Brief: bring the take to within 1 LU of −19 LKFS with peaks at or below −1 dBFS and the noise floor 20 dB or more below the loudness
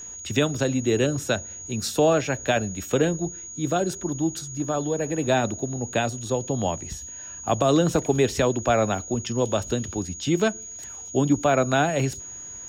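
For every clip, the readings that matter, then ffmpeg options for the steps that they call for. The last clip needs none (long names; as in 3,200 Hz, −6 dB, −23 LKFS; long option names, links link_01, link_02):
interfering tone 6,700 Hz; level of the tone −36 dBFS; integrated loudness −24.5 LKFS; sample peak −9.0 dBFS; target loudness −19.0 LKFS
→ -af "bandreject=frequency=6700:width=30"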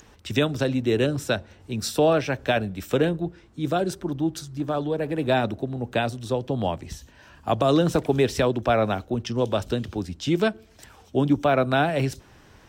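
interfering tone none found; integrated loudness −24.5 LKFS; sample peak −9.5 dBFS; target loudness −19.0 LKFS
→ -af "volume=5.5dB"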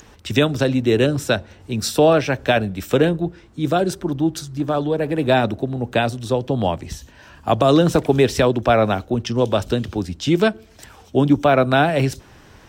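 integrated loudness −19.0 LKFS; sample peak −4.0 dBFS; background noise floor −48 dBFS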